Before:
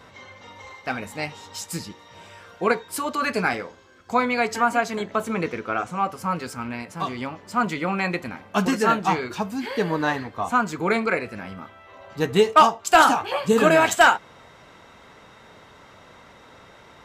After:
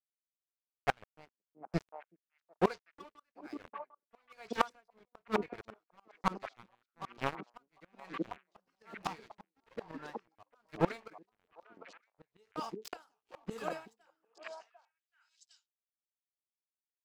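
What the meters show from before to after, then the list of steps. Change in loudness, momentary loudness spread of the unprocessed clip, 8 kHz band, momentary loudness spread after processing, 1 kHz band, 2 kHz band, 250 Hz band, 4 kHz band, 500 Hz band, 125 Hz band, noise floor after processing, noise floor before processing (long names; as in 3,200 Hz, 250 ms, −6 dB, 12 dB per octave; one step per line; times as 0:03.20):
−17.5 dB, 16 LU, −25.5 dB, 21 LU, −19.0 dB, −21.5 dB, −16.5 dB, −20.0 dB, −17.5 dB, −13.5 dB, below −85 dBFS, −50 dBFS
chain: low-pass that shuts in the quiet parts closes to 490 Hz, open at −14.5 dBFS
thirty-one-band graphic EQ 250 Hz −11 dB, 5,000 Hz +12 dB, 10,000 Hz +4 dB
dead-zone distortion −31.5 dBFS
gate with flip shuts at −18 dBFS, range −29 dB
on a send: echo through a band-pass that steps 375 ms, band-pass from 290 Hz, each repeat 1.4 octaves, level −3 dB
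on the sum: tremolo with a sine in dB 1.1 Hz, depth 36 dB
level +7.5 dB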